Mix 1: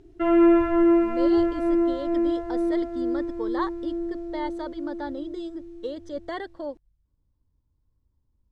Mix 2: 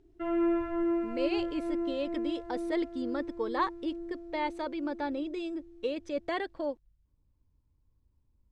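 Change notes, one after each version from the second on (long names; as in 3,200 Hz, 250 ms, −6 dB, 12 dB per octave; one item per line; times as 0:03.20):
speech: remove Butterworth band-reject 2,500 Hz, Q 2.6
background −11.0 dB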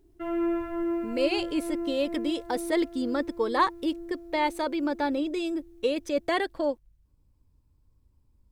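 speech +6.0 dB
master: remove high-frequency loss of the air 91 metres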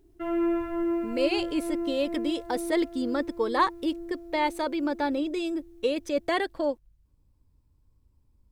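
reverb: on, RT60 0.65 s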